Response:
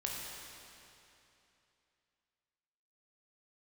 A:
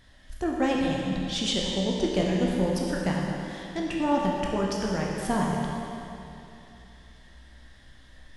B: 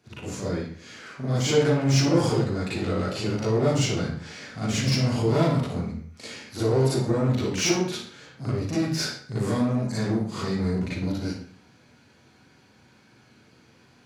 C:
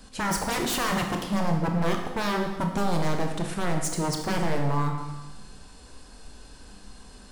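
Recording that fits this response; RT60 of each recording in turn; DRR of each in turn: A; 2.9, 0.55, 1.2 s; -3.0, -11.0, 3.0 dB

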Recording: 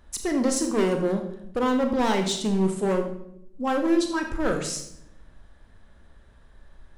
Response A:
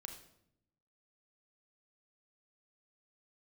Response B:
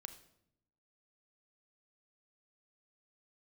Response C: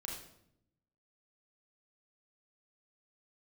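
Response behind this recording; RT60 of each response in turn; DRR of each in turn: A; 0.75 s, not exponential, 0.75 s; 4.5, 9.0, -1.5 dB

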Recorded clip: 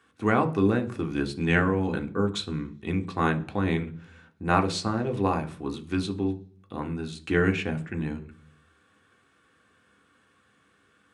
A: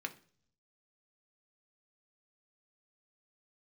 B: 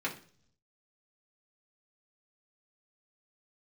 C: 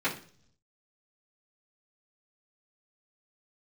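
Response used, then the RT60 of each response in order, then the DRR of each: A; 0.50, 0.50, 0.50 s; 5.0, -4.5, -11.0 dB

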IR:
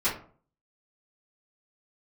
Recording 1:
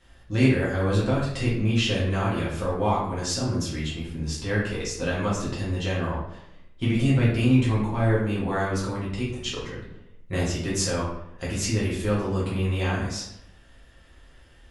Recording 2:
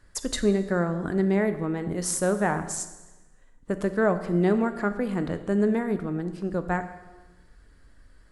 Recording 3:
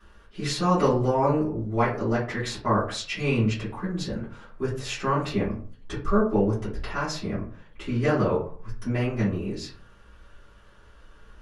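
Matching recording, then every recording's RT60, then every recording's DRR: 3; 0.85, 1.2, 0.45 s; -8.0, 9.0, -13.5 dB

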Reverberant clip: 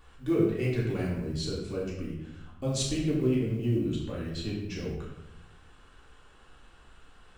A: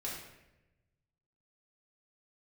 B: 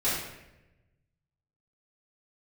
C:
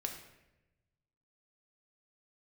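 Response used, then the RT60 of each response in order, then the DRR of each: A; 0.95, 0.95, 0.95 s; -5.5, -12.5, 2.5 dB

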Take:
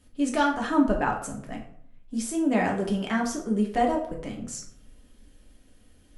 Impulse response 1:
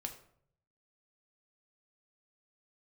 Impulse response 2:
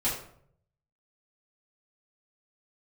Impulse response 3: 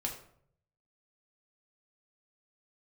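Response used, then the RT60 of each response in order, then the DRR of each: 3; 0.65, 0.65, 0.65 s; 3.5, -10.5, -0.5 dB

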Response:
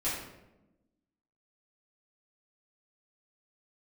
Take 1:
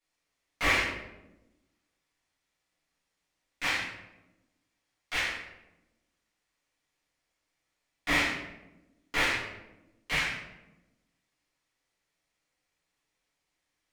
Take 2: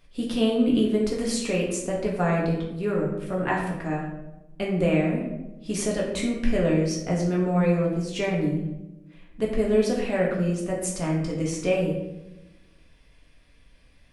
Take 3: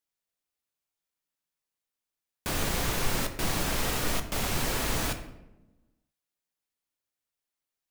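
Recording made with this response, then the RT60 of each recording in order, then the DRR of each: 1; 0.95, 1.0, 1.0 s; -11.0, -3.5, 6.5 dB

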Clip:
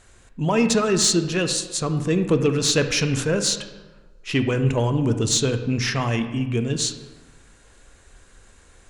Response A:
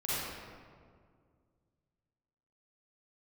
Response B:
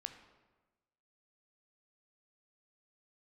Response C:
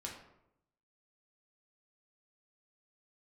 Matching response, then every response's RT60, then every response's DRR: B; 2.0, 1.2, 0.80 s; -11.0, 7.0, -2.0 dB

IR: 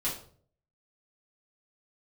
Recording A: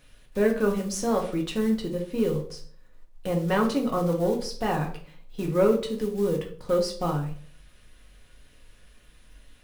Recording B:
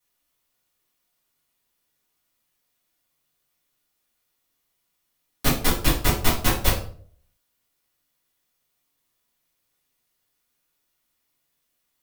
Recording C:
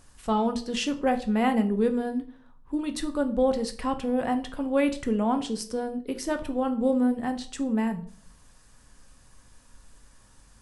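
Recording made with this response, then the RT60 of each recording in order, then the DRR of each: B; 0.50, 0.50, 0.50 s; 0.5, -9.0, 6.5 dB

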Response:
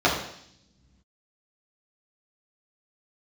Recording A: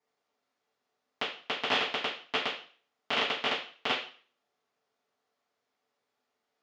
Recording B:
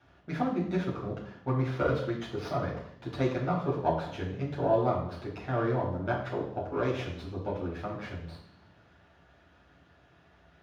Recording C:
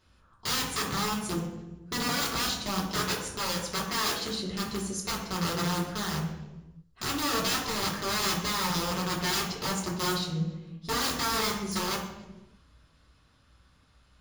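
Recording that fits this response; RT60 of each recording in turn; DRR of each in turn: B; 0.45, 0.70, 1.1 s; -9.5, -6.5, -5.5 dB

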